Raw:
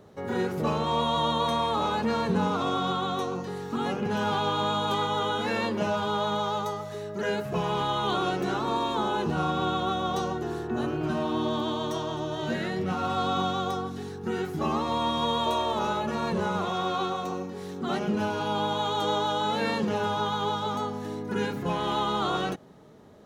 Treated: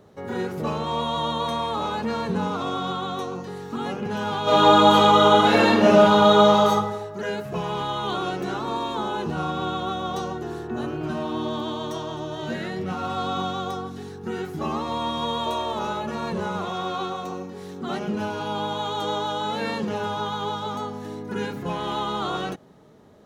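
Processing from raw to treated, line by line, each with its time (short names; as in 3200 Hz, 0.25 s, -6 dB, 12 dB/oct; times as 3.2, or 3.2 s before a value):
4.43–6.71 reverb throw, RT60 0.88 s, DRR -11.5 dB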